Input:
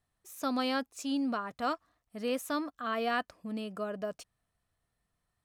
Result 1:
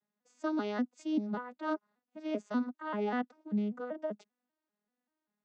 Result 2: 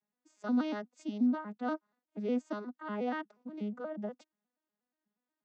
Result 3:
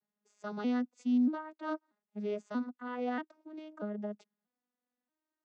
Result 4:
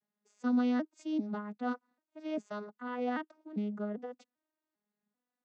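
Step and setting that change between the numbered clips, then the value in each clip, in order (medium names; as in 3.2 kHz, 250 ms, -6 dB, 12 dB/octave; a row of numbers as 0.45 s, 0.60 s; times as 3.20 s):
vocoder on a broken chord, a note every: 195 ms, 120 ms, 635 ms, 395 ms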